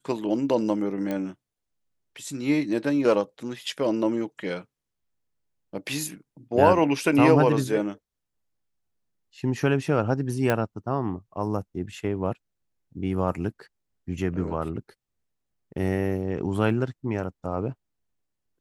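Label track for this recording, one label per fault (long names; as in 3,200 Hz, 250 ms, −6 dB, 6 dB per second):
1.110000	1.110000	click −17 dBFS
10.500000	10.500000	click −10 dBFS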